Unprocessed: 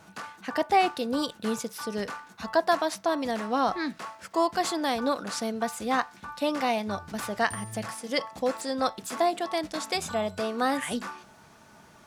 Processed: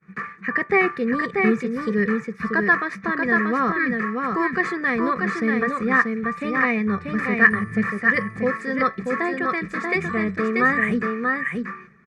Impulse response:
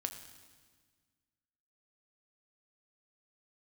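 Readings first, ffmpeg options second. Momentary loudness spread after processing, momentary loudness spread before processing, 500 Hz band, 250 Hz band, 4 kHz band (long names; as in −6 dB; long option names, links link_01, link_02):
6 LU, 9 LU, +3.5 dB, +9.0 dB, −9.5 dB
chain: -filter_complex "[0:a]firequalizer=gain_entry='entry(110,0);entry(160,14);entry(390,13);entry(640,-4);entry(1500,10);entry(2100,15);entry(3000,-13)':delay=0.05:min_phase=1,agate=range=-33dB:threshold=-36dB:ratio=3:detection=peak,lowpass=7000,equalizer=frequency=620:width=2.8:gain=-12,aecho=1:1:1.7:0.79,asplit=2[link_01][link_02];[link_02]aecho=0:1:636:0.631[link_03];[link_01][link_03]amix=inputs=2:normalize=0"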